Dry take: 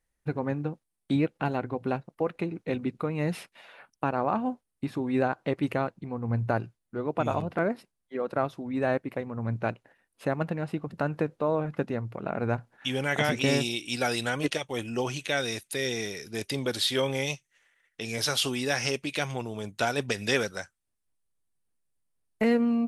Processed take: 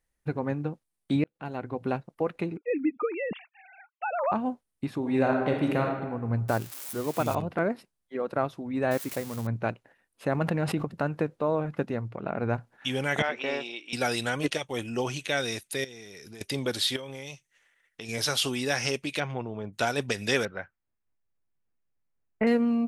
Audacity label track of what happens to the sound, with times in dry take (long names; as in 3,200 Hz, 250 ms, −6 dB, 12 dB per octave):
1.240000	1.820000	fade in
2.570000	4.320000	three sine waves on the formant tracks
4.980000	5.920000	thrown reverb, RT60 1.2 s, DRR 1 dB
6.480000	7.350000	spike at every zero crossing of −27.5 dBFS
8.910000	9.470000	spike at every zero crossing of −27.5 dBFS
10.280000	10.850000	envelope flattener amount 70%
12.080000	12.550000	high-frequency loss of the air 55 metres
13.220000	13.930000	band-pass filter 520–2,300 Hz
15.840000	16.410000	downward compressor 10 to 1, threshold −41 dBFS
16.960000	18.090000	downward compressor 8 to 1, threshold −35 dBFS
19.190000	19.720000	low-pass filter 2,700 Hz → 1,500 Hz
20.450000	22.470000	inverse Chebyshev low-pass filter stop band from 9,700 Hz, stop band 70 dB